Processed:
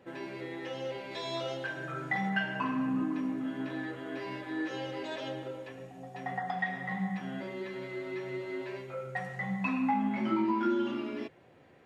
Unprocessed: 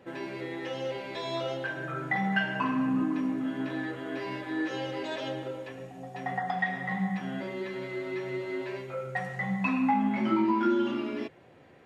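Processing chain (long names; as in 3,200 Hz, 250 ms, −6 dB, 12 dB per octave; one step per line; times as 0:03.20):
0:01.11–0:02.30: parametric band 6,000 Hz +5 dB 1.8 octaves
level −3.5 dB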